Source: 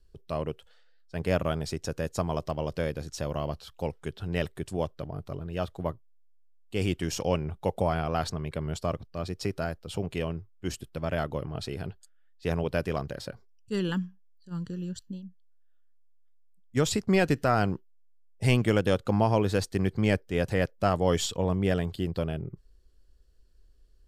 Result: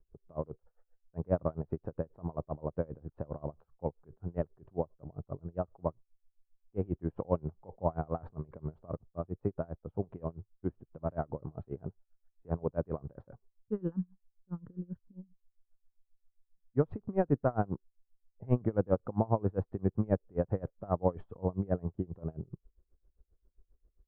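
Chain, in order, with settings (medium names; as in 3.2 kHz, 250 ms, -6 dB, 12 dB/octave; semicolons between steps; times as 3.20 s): low-pass 1.1 kHz 24 dB/octave; logarithmic tremolo 7.5 Hz, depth 27 dB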